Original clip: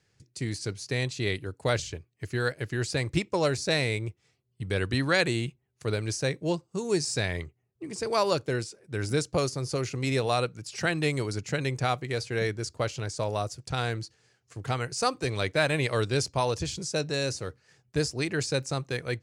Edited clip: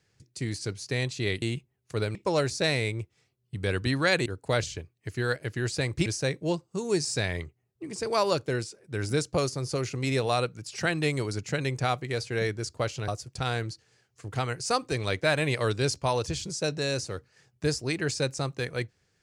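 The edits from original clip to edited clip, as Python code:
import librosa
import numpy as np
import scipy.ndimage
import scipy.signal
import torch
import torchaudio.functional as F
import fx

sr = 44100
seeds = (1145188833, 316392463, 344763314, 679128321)

y = fx.edit(x, sr, fx.swap(start_s=1.42, length_s=1.8, other_s=5.33, other_length_s=0.73),
    fx.cut(start_s=13.08, length_s=0.32), tone=tone)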